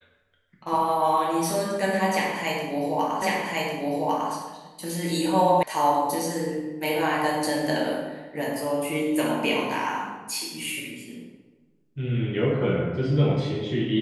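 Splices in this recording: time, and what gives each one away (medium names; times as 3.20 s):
3.22 s: repeat of the last 1.1 s
5.63 s: sound stops dead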